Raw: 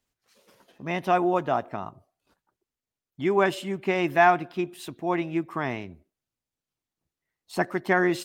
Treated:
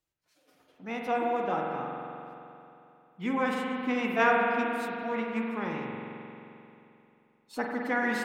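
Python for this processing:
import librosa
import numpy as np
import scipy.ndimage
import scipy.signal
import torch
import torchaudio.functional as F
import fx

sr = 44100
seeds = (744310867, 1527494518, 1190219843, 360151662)

y = fx.pitch_keep_formants(x, sr, semitones=5.0)
y = fx.rev_spring(y, sr, rt60_s=2.9, pass_ms=(44,), chirp_ms=55, drr_db=-0.5)
y = y * librosa.db_to_amplitude(-7.0)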